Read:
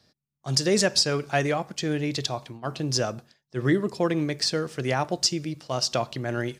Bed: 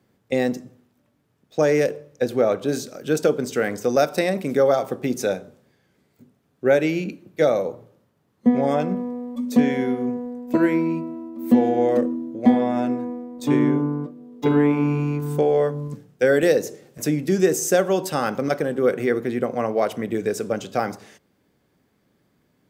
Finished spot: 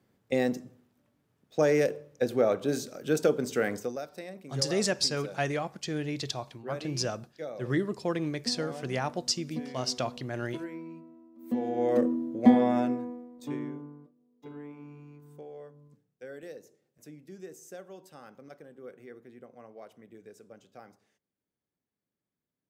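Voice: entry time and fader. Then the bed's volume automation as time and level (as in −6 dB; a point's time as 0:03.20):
4.05 s, −6.0 dB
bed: 0:03.77 −5.5 dB
0:04.01 −20.5 dB
0:11.30 −20.5 dB
0:12.06 −3 dB
0:12.73 −3 dB
0:14.15 −26.5 dB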